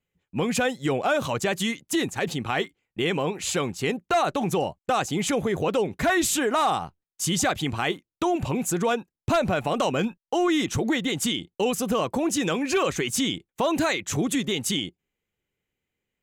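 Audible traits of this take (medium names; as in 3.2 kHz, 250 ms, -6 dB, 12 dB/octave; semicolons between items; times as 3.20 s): noise floor -89 dBFS; spectral tilt -4.0 dB/octave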